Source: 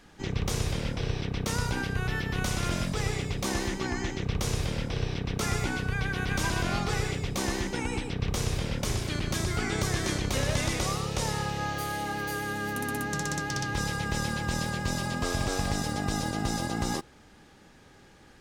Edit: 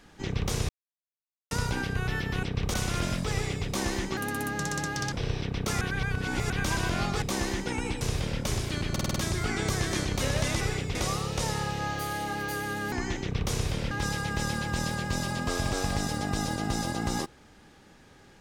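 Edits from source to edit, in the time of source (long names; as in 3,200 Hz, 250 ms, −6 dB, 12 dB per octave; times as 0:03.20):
0:00.69–0:01.51: silence
0:03.86–0:04.85: swap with 0:12.71–0:13.66
0:05.54–0:06.23: reverse
0:06.95–0:07.29: move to 0:10.74
0:08.08–0:08.39: move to 0:02.43
0:09.29: stutter 0.05 s, 6 plays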